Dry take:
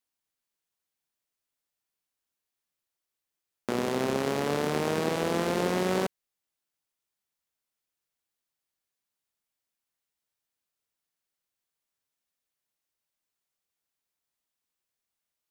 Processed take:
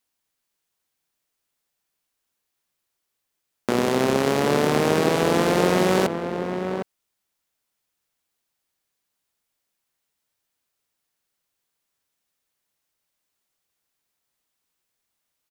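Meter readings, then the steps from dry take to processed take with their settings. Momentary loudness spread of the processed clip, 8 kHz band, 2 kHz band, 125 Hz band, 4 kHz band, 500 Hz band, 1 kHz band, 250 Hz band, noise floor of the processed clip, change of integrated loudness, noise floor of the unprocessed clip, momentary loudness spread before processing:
9 LU, +7.5 dB, +8.0 dB, +8.0 dB, +7.5 dB, +8.0 dB, +8.0 dB, +8.0 dB, −80 dBFS, +7.0 dB, below −85 dBFS, 5 LU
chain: slap from a distant wall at 130 metres, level −7 dB
level +7.5 dB

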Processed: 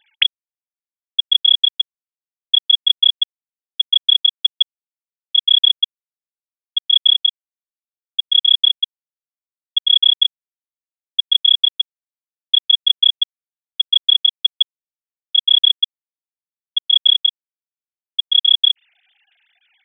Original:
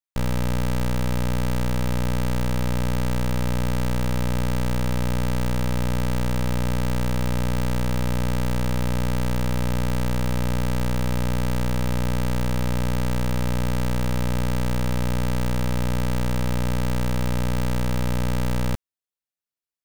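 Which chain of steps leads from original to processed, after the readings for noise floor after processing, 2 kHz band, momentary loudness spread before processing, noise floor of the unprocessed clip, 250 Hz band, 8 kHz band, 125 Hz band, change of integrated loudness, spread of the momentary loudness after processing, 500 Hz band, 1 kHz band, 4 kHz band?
below −85 dBFS, can't be measured, 0 LU, below −85 dBFS, below −40 dB, below −40 dB, below −40 dB, +11.5 dB, 11 LU, below −40 dB, below −35 dB, +27.0 dB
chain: three sine waves on the formant tracks
high-shelf EQ 2,300 Hz +9.5 dB
phaser with its sweep stopped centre 2,600 Hz, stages 4
level −2.5 dB

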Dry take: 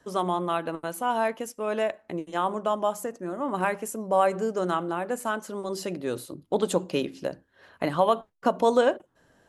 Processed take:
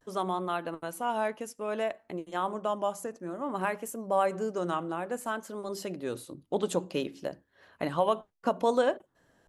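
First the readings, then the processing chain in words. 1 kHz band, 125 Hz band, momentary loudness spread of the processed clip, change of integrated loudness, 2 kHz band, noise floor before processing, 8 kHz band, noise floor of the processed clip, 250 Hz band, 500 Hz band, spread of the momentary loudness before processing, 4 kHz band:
−4.5 dB, −4.5 dB, 10 LU, −4.5 dB, −4.5 dB, −66 dBFS, −4.5 dB, −71 dBFS, −4.5 dB, −4.5 dB, 10 LU, −4.5 dB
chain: pitch vibrato 0.58 Hz 56 cents
level −4.5 dB

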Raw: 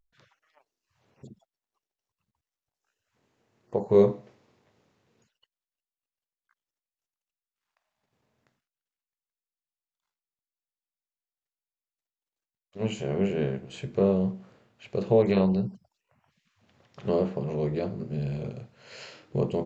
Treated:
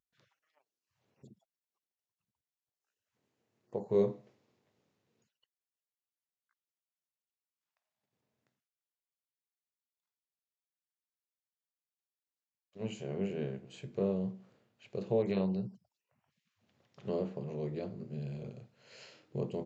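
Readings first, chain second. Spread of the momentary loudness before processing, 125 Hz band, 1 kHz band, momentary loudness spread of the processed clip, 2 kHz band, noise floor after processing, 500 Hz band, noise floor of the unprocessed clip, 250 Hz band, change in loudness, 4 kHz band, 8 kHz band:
20 LU, −9.5 dB, −11.0 dB, 20 LU, −10.5 dB, below −85 dBFS, −9.5 dB, below −85 dBFS, −9.0 dB, −9.5 dB, −9.5 dB, can't be measured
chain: high-pass filter 97 Hz
parametric band 1,200 Hz −3.5 dB 1.8 octaves
level −8.5 dB

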